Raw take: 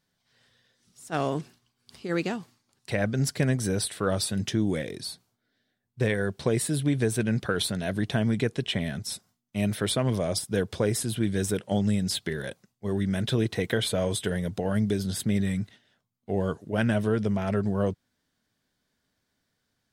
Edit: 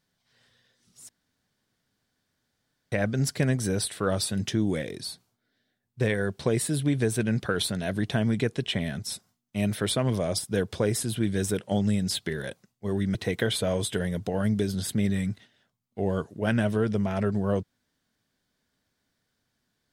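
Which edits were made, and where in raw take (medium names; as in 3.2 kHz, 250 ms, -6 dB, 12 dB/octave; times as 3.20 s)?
1.09–2.92 s: room tone
13.15–13.46 s: delete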